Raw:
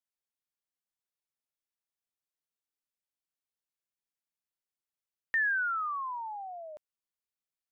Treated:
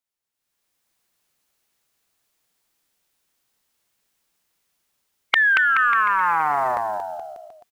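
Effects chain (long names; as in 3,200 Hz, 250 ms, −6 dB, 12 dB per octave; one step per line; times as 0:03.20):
formants moved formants +3 semitones
automatic gain control gain up to 15 dB
on a send: bouncing-ball delay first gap 230 ms, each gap 0.85×, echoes 5
on the sum: downward compressor 6 to 1, threshold −20 dBFS, peak gain reduction 8 dB
highs frequency-modulated by the lows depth 0.6 ms
level +4.5 dB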